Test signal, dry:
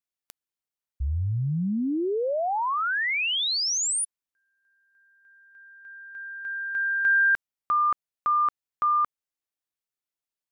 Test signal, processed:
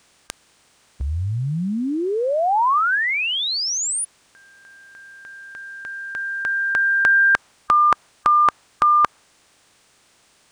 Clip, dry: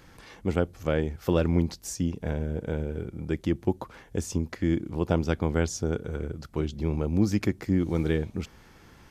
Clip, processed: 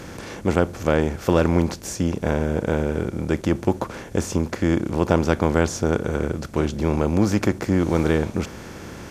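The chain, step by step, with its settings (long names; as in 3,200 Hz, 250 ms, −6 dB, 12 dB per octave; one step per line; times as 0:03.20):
compressor on every frequency bin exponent 0.6
dynamic equaliser 1,000 Hz, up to +6 dB, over −36 dBFS, Q 0.9
level +2 dB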